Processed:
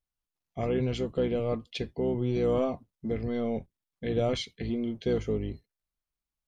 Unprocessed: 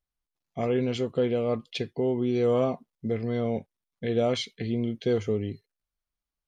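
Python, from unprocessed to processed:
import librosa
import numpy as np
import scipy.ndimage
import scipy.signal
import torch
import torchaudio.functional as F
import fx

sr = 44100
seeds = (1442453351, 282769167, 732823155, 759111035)

y = fx.octave_divider(x, sr, octaves=1, level_db=-4.0)
y = F.gain(torch.from_numpy(y), -3.0).numpy()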